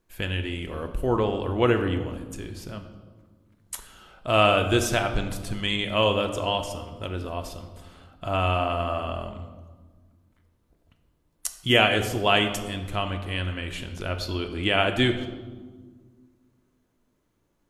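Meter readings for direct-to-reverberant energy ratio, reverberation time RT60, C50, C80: 6.0 dB, 1.5 s, 9.5 dB, 11.0 dB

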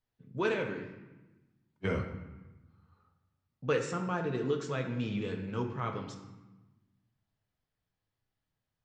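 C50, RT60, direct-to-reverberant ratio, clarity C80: 7.0 dB, 1.1 s, 3.0 dB, 9.0 dB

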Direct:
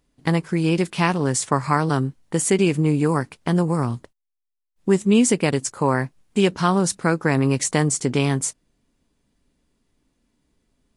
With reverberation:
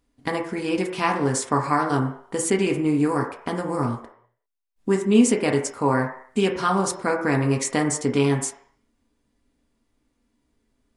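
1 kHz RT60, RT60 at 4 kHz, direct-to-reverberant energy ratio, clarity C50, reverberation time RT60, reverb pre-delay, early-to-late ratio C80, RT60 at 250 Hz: 0.65 s, 0.65 s, 1.0 dB, 7.5 dB, 0.60 s, 3 ms, 10.5 dB, 0.40 s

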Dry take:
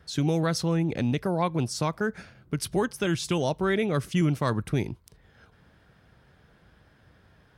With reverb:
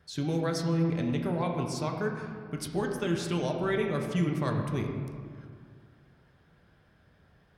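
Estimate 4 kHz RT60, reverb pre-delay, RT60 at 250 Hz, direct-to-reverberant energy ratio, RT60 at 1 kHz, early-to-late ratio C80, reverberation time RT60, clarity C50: 1.1 s, 5 ms, 2.4 s, 1.5 dB, 2.0 s, 5.0 dB, 2.1 s, 4.0 dB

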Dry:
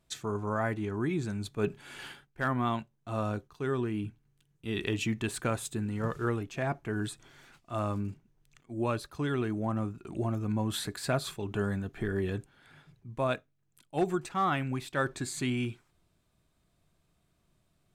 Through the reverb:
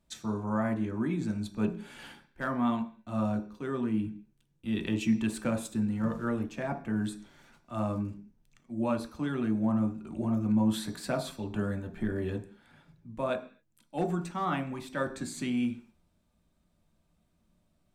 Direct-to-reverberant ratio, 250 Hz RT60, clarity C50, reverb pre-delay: 3.0 dB, 0.55 s, 12.0 dB, 3 ms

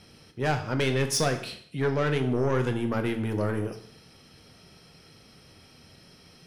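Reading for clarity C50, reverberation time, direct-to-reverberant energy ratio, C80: 11.0 dB, 0.60 s, 6.0 dB, 13.5 dB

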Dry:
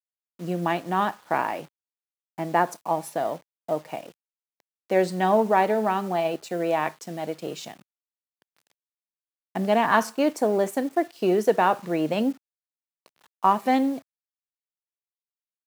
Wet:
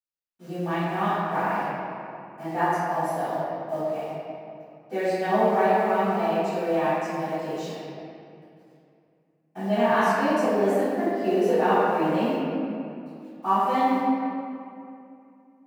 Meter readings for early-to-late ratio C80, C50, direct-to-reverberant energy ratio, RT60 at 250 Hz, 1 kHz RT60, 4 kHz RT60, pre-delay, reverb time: -2.5 dB, -5.5 dB, -18.5 dB, 3.0 s, 2.5 s, 1.6 s, 3 ms, 2.6 s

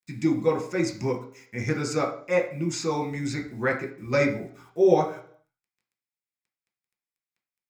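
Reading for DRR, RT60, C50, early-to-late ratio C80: 1.5 dB, 0.55 s, 10.0 dB, 14.5 dB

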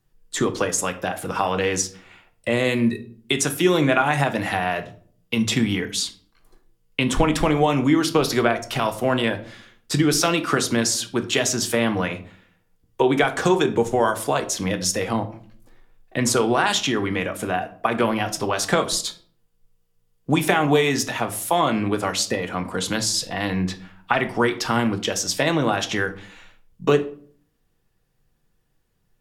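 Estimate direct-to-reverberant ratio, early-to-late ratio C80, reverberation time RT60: 6.5 dB, 18.5 dB, 0.50 s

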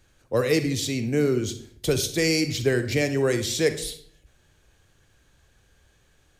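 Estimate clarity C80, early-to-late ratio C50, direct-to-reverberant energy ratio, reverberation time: 15.0 dB, 11.0 dB, 9.0 dB, 0.60 s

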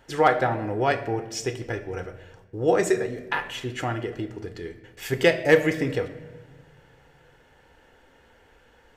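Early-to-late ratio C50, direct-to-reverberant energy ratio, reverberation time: 12.5 dB, 10.5 dB, 1.3 s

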